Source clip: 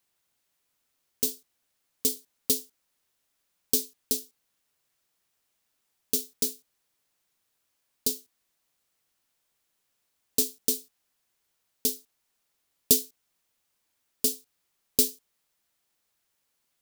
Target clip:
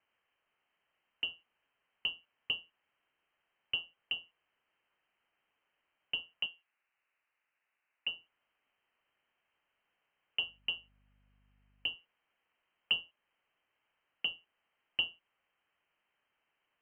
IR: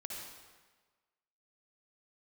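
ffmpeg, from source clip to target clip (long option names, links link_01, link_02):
-filter_complex "[0:a]asettb=1/sr,asplit=3[link_01][link_02][link_03];[link_01]atrim=end=6.464[link_04];[link_02]atrim=start=6.46:end=8.07,asetpts=PTS-STARTPTS,afade=type=in:duration=0.004:curve=qsin,afade=type=out:start_time=1.606:duration=0.004:curve=qsin,acrossover=split=310 2300:gain=0.158 1 0.0794[link_05][link_06][link_07];[link_05][link_06][link_07]amix=inputs=3:normalize=0[link_08];[link_03]atrim=start=8.066[link_09];[link_04][link_08]acrossfade=duration=0.004:curve1=hsin:curve2=qsin[link_10];[link_10][link_09]acrossfade=duration=0.004:curve1=qsin:curve2=hsin,asplit=2[link_11][link_12];[link_12]acompressor=threshold=-31dB:ratio=6,volume=1dB[link_13];[link_11][link_13]amix=inputs=2:normalize=0,lowpass=frequency=2700:width_type=q:width=0.5098,lowpass=frequency=2700:width_type=q:width=0.6013,lowpass=frequency=2700:width_type=q:width=0.9,lowpass=frequency=2700:width_type=q:width=2.563,afreqshift=-3200,asettb=1/sr,asplit=3[link_14][link_15][link_16];[link_14]atrim=end=10.404[link_17];[link_15]atrim=start=10.4:end=11.95,asetpts=PTS-STARTPTS,afade=type=in:duration=0.004:curve=qsin,afade=type=out:start_time=1.546:duration=0.004:curve=qsin,aeval=exprs='val(0)+0.000501*(sin(2*PI*50*n/s)+sin(2*PI*2*50*n/s)/2+sin(2*PI*3*50*n/s)/3+sin(2*PI*4*50*n/s)/4+sin(2*PI*5*50*n/s)/5)':channel_layout=same[link_18];[link_16]atrim=start=11.946[link_19];[link_17][link_18]acrossfade=duration=0.004:curve1=hsin:curve2=qsin[link_20];[link_20][link_19]acrossfade=duration=0.004:curve1=qsin:curve2=hsin,volume=-3.5dB"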